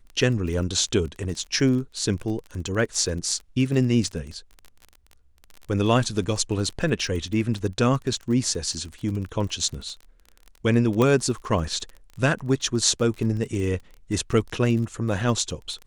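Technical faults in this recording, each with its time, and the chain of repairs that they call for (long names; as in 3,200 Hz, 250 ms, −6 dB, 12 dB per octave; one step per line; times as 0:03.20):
surface crackle 27 per second −31 dBFS
0:11.02: click −10 dBFS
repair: click removal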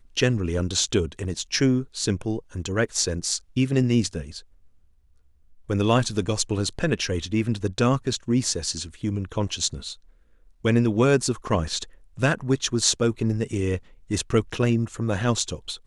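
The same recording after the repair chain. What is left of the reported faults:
none of them is left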